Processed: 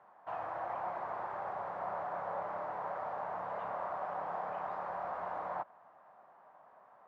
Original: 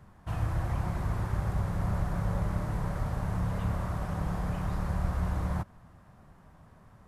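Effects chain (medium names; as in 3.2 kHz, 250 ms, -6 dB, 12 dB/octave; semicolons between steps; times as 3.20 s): ladder band-pass 880 Hz, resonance 40%; trim +12 dB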